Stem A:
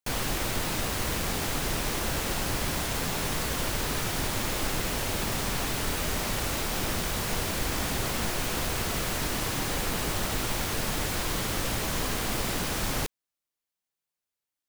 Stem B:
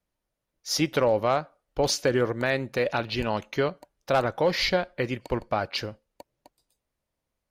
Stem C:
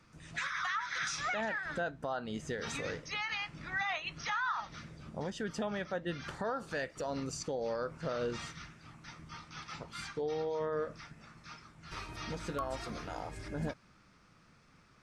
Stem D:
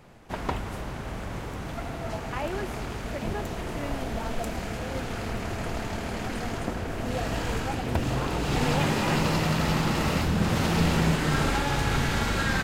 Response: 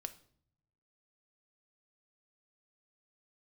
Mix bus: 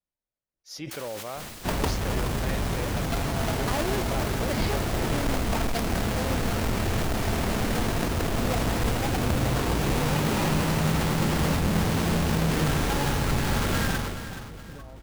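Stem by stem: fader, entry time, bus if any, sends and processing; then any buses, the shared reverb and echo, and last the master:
-11.0 dB, 0.85 s, no send, no echo send, spectral gate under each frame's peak -15 dB weak
-13.5 dB, 0.00 s, no send, no echo send, dry
-14.5 dB, 2.20 s, no send, echo send -9.5 dB, tilt -4 dB/oct
-0.5 dB, 1.35 s, send -8 dB, echo send -9 dB, half-waves squared off; compressor, threshold -25 dBFS, peak gain reduction 9.5 dB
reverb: on, RT60 0.60 s, pre-delay 4 ms
echo: feedback echo 0.425 s, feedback 36%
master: sustainer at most 35 dB/s

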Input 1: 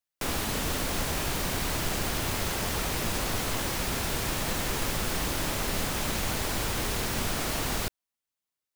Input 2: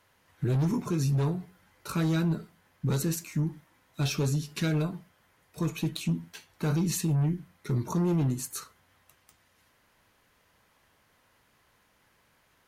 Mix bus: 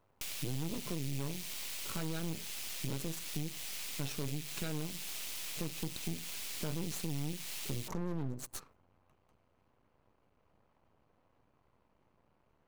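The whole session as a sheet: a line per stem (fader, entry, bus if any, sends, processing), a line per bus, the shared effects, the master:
+1.0 dB, 0.00 s, no send, steep high-pass 2200 Hz 36 dB/oct
+3.0 dB, 0.00 s, no send, Wiener smoothing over 25 samples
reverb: off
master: half-wave rectifier; compressor 2.5:1, threshold -38 dBFS, peak gain reduction 11.5 dB

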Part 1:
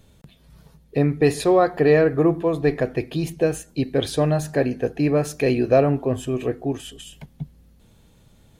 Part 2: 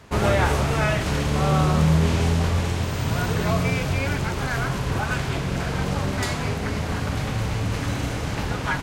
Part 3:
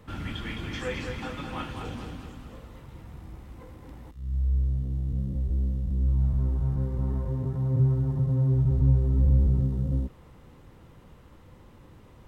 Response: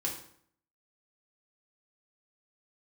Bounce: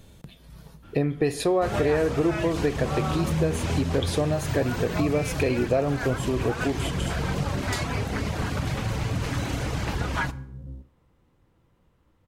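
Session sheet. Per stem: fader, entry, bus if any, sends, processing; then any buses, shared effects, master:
+2.5 dB, 0.00 s, send -18 dB, dry
-0.5 dB, 1.50 s, send -16 dB, reverb removal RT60 0.57 s
-14.5 dB, 0.75 s, send -15.5 dB, dry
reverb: on, RT60 0.60 s, pre-delay 3 ms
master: compressor 3:1, threshold -23 dBFS, peak gain reduction 11.5 dB

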